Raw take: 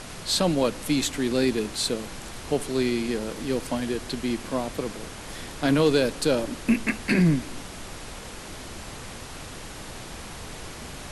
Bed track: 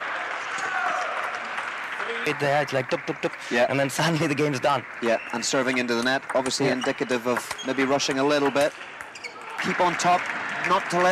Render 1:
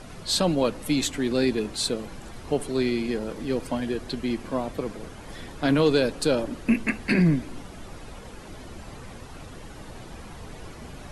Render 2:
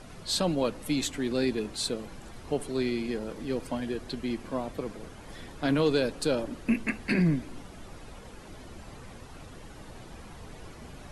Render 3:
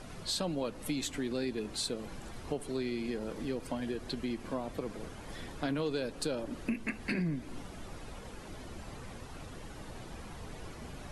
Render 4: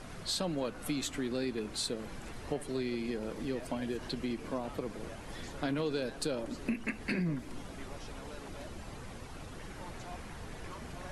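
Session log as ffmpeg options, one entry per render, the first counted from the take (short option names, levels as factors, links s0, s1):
-af "afftdn=nr=10:nf=-40"
-af "volume=0.596"
-af "acompressor=threshold=0.0224:ratio=3"
-filter_complex "[1:a]volume=0.0376[s0];[0:a][s0]amix=inputs=2:normalize=0"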